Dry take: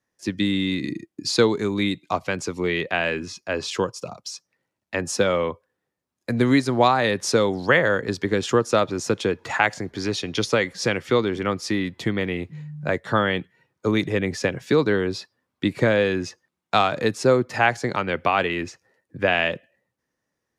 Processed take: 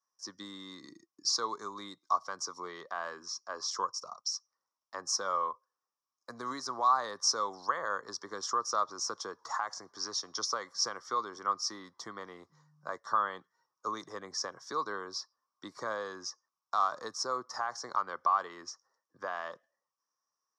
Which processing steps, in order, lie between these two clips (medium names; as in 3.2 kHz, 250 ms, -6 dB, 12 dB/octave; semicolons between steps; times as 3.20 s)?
peak limiter -10 dBFS, peak gain reduction 6.5 dB; two resonant band-passes 2.5 kHz, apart 2.3 oct; trim +3.5 dB